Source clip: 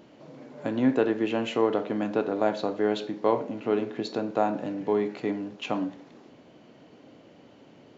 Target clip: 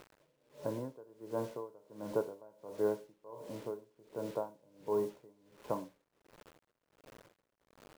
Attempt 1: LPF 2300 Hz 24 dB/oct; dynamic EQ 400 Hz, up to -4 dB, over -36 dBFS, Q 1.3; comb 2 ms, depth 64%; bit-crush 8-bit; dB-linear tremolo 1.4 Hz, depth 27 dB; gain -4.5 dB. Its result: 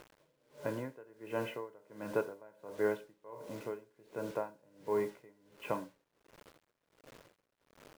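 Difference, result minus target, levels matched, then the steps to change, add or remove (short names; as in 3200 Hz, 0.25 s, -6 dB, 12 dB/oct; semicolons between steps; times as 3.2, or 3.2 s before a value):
2000 Hz band +11.0 dB
change: LPF 1100 Hz 24 dB/oct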